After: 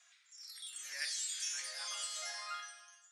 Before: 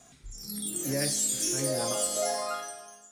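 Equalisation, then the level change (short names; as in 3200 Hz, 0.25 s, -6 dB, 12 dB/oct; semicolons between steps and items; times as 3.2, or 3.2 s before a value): ladder high-pass 1300 Hz, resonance 25%; LPF 5200 Hz 12 dB/oct; +2.0 dB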